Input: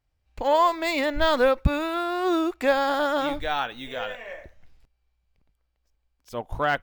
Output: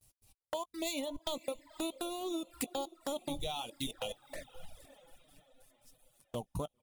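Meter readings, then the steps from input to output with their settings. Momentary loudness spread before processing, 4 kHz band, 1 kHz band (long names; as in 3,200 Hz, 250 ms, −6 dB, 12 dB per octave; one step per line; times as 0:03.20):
15 LU, −8.5 dB, −19.5 dB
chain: mu-law and A-law mismatch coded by mu
graphic EQ with 15 bands 160 Hz +11 dB, 1,600 Hz −9 dB, 10,000 Hz +12 dB
gate pattern "x.x..x.xxxx." 142 BPM −60 dB
downward compressor 6 to 1, threshold −32 dBFS, peak gain reduction 14.5 dB
noise gate with hold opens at −58 dBFS
double-tracking delay 18 ms −13.5 dB
feedback delay with all-pass diffusion 542 ms, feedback 46%, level −14 dB
flanger swept by the level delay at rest 10.7 ms, full sweep at −33.5 dBFS
high-shelf EQ 4,100 Hz +11 dB
notch filter 2,200 Hz, Q 20
reverb reduction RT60 0.94 s
level −1.5 dB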